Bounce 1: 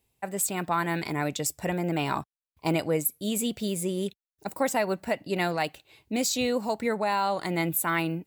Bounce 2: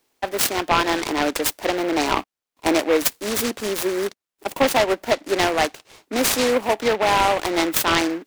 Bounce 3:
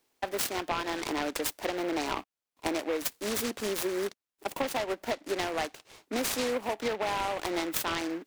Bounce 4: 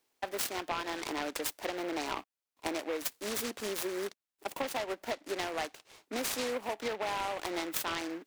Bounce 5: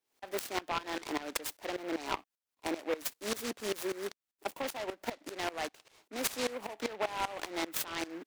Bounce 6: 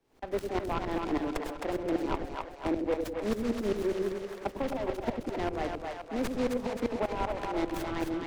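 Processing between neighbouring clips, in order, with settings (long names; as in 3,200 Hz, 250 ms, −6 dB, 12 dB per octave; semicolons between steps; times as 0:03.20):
Butterworth high-pass 260 Hz 36 dB per octave; short delay modulated by noise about 1,400 Hz, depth 0.087 ms; level +8.5 dB
downward compressor, threshold −22 dBFS, peak gain reduction 10 dB; level −5.5 dB
low-shelf EQ 320 Hz −4.5 dB; level −3 dB
tremolo with a ramp in dB swelling 5.1 Hz, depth 19 dB; level +5.5 dB
spectral tilt −4 dB per octave; echo with a time of its own for lows and highs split 520 Hz, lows 97 ms, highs 263 ms, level −4.5 dB; multiband upward and downward compressor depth 40%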